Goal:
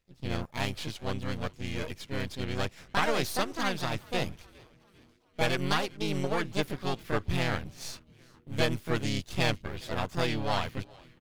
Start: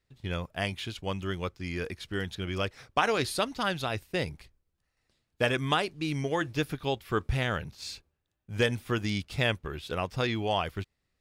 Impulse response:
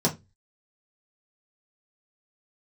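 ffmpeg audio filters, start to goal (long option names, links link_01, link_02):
-filter_complex "[0:a]aeval=exprs='if(lt(val(0),0),0.251*val(0),val(0))':channel_layout=same,asplit=5[link_01][link_02][link_03][link_04][link_05];[link_02]adelay=404,afreqshift=-120,volume=-24dB[link_06];[link_03]adelay=808,afreqshift=-240,volume=-29.2dB[link_07];[link_04]adelay=1212,afreqshift=-360,volume=-34.4dB[link_08];[link_05]adelay=1616,afreqshift=-480,volume=-39.6dB[link_09];[link_01][link_06][link_07][link_08][link_09]amix=inputs=5:normalize=0,asplit=2[link_10][link_11];[link_11]asetrate=58866,aresample=44100,atempo=0.749154,volume=-2dB[link_12];[link_10][link_12]amix=inputs=2:normalize=0"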